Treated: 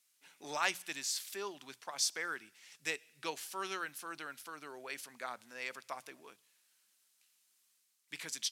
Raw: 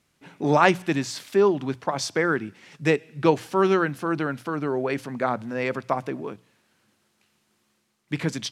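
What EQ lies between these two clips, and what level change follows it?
first difference
0.0 dB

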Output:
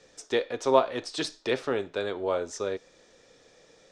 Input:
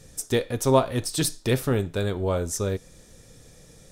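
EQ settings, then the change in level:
high-frequency loss of the air 71 metres
three-way crossover with the lows and the highs turned down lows −22 dB, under 310 Hz, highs −24 dB, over 7,400 Hz
0.0 dB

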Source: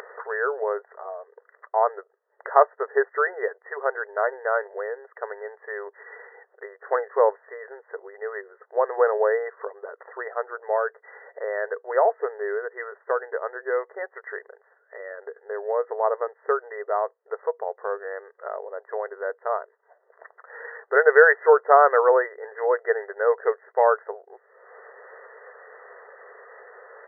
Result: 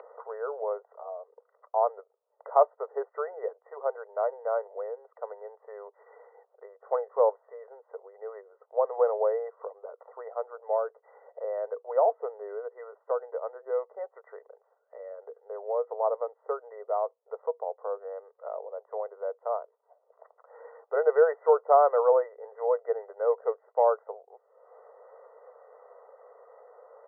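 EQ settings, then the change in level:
moving average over 26 samples
Butterworth high-pass 470 Hz 48 dB per octave
high-frequency loss of the air 240 metres
0.0 dB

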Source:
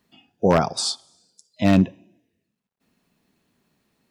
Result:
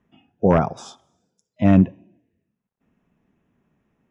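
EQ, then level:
moving average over 10 samples
low-shelf EQ 160 Hz +6.5 dB
0.0 dB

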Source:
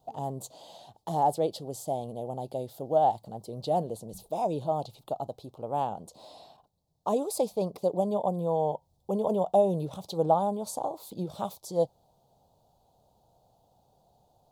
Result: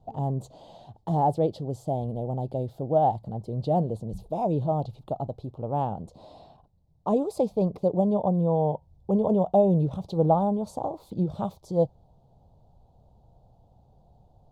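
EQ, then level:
RIAA equalisation playback
0.0 dB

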